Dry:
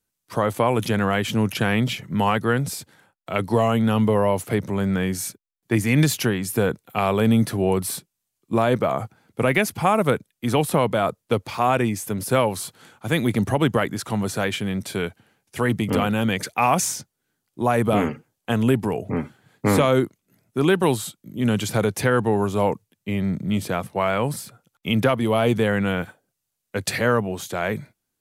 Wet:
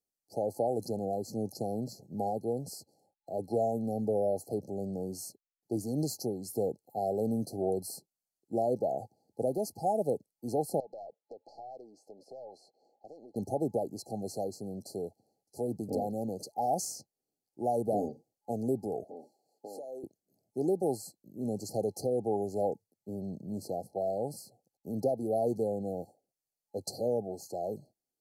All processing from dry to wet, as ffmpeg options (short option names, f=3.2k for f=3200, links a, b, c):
-filter_complex "[0:a]asettb=1/sr,asplit=3[a][b][c];[a]atrim=end=10.804[d];[b]atrim=start=10.8:end=13.36,asetpts=PTS-STARTPTS,afade=t=in:d=0.004:c=qsin,afade=t=out:st=2.556:d=0.004:c=qsin,acompressor=threshold=-26dB:ratio=10:attack=3.2:release=140:knee=1:detection=peak,highpass=450,lowpass=2.6k,aeval=exprs='(tanh(20*val(0)+0.4)-tanh(0.4))/20':c=same[e];[c]atrim=start=13.356[f];[d][e]acrossfade=d=0.004:c1=hsin:c2=qsin[g];[g][f]acrossfade=d=0.004:c1=qsin:c2=hsin,asettb=1/sr,asplit=3[h][i][j];[h]atrim=end=19.044[k];[i]atrim=start=19.04:end=20.04,asetpts=PTS-STARTPTS,afade=t=in:d=0.004:c=qsin,afade=t=out:st=0.996:d=0.004:c=qsin,highpass=440,acompressor=threshold=-30dB:ratio=5:attack=3.2:release=140:knee=1:detection=peak[l];[j]atrim=start=20.036[m];[k][l]acrossfade=d=0.004:c1=hsin:c2=qsin[n];[n][m]acrossfade=d=0.004:c1=qsin:c2=hsin,afftfilt=real='re*(1-between(b*sr/4096,840,4100))':imag='im*(1-between(b*sr/4096,840,4100))':win_size=4096:overlap=0.75,bass=f=250:g=-11,treble=f=4k:g=-6,volume=-7.5dB"